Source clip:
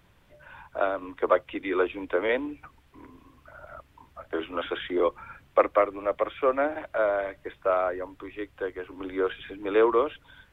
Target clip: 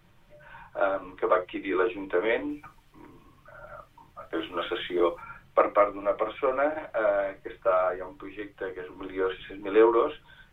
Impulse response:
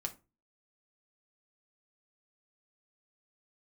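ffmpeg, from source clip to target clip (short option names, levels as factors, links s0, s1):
-filter_complex "[1:a]atrim=start_sample=2205,atrim=end_sample=3528[s0];[0:a][s0]afir=irnorm=-1:irlink=0,asplit=3[s1][s2][s3];[s1]afade=t=out:st=2.49:d=0.02[s4];[s2]adynamicequalizer=threshold=0.00316:dfrequency=3400:dqfactor=0.7:tfrequency=3400:tqfactor=0.7:attack=5:release=100:ratio=0.375:range=3.5:mode=boostabove:tftype=highshelf,afade=t=in:st=2.49:d=0.02,afade=t=out:st=5.21:d=0.02[s5];[s3]afade=t=in:st=5.21:d=0.02[s6];[s4][s5][s6]amix=inputs=3:normalize=0"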